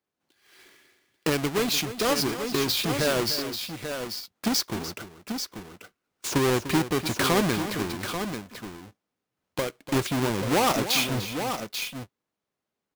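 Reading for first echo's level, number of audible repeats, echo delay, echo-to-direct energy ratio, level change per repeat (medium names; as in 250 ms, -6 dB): -12.5 dB, 2, 297 ms, -6.5 dB, no regular repeats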